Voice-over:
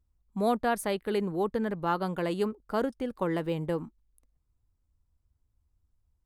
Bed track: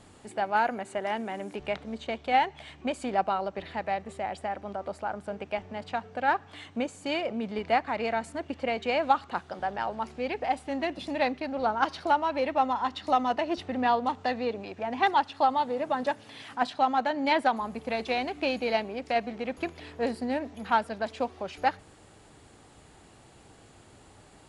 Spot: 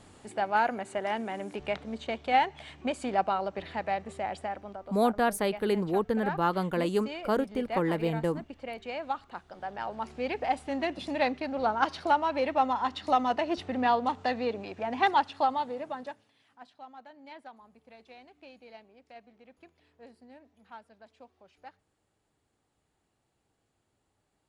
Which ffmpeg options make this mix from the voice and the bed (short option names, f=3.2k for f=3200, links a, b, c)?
-filter_complex "[0:a]adelay=4550,volume=1.5dB[a];[1:a]volume=8.5dB,afade=t=out:st=4.35:d=0.52:silence=0.354813,afade=t=in:st=9.49:d=0.78:silence=0.354813,afade=t=out:st=15.19:d=1.13:silence=0.0749894[b];[a][b]amix=inputs=2:normalize=0"